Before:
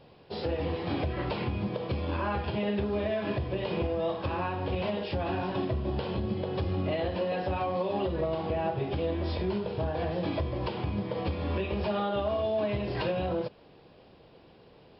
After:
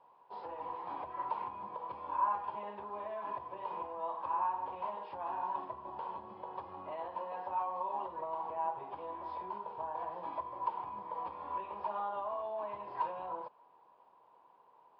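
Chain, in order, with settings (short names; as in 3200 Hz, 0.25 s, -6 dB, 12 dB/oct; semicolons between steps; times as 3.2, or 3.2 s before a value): band-pass 970 Hz, Q 12; gain +9 dB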